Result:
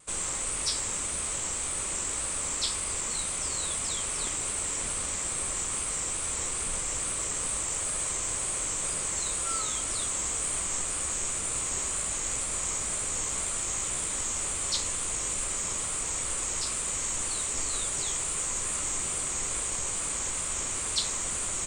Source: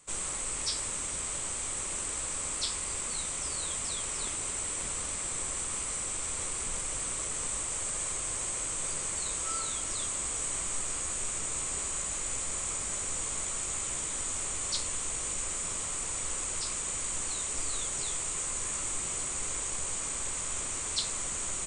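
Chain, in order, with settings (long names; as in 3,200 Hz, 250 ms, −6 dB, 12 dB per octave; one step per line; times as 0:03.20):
harmonic generator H 8 −40 dB, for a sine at −16 dBFS
tape wow and flutter 64 cents
level +3 dB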